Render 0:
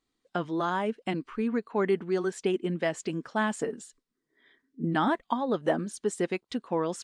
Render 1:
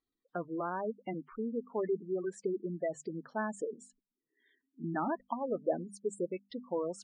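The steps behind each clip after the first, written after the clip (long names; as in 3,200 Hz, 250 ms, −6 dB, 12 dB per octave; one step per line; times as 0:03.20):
mains-hum notches 50/100/150/200/250 Hz
dynamic equaliser 540 Hz, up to +5 dB, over −41 dBFS, Q 1.7
gate on every frequency bin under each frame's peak −15 dB strong
level −8.5 dB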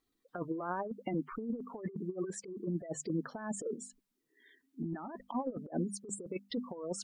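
compressor whose output falls as the input rises −39 dBFS, ratio −0.5
level +3 dB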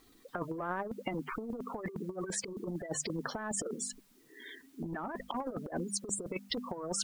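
every bin compressed towards the loudest bin 2 to 1
level +2 dB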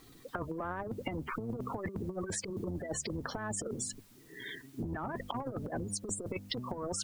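sub-octave generator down 1 octave, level −2 dB
downward compressor, threshold −39 dBFS, peak gain reduction 9 dB
level +5 dB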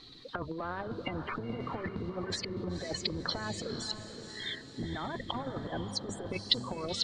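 low-pass with resonance 4,100 Hz, resonance Q 6.9
feedback delay with all-pass diffusion 502 ms, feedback 45%, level −8.5 dB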